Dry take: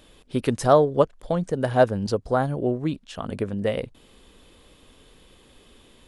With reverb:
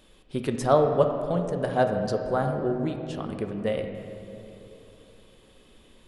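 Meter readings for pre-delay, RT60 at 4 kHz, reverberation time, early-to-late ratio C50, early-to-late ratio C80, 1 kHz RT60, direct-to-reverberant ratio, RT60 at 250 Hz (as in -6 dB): 5 ms, 1.7 s, 2.9 s, 6.0 dB, 7.0 dB, 2.5 s, 4.0 dB, 3.2 s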